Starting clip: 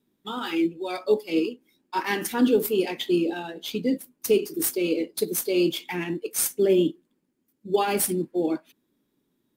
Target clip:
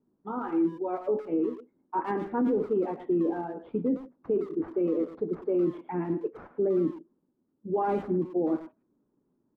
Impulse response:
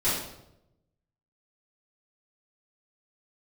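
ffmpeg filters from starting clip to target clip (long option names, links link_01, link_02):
-filter_complex "[0:a]lowpass=frequency=1200:width=0.5412,lowpass=frequency=1200:width=1.3066,alimiter=limit=-19.5dB:level=0:latency=1:release=25,asplit=2[link_01][link_02];[link_02]adelay=110,highpass=300,lowpass=3400,asoftclip=type=hard:threshold=-29dB,volume=-11dB[link_03];[link_01][link_03]amix=inputs=2:normalize=0"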